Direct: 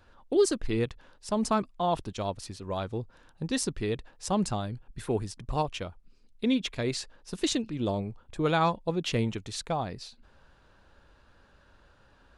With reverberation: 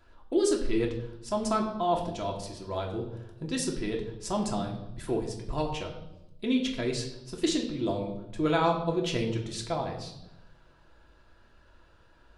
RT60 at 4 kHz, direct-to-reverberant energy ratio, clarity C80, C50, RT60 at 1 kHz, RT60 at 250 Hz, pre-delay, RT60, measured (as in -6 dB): 0.75 s, 0.0 dB, 10.5 dB, 8.0 dB, 0.80 s, 1.2 s, 3 ms, 0.90 s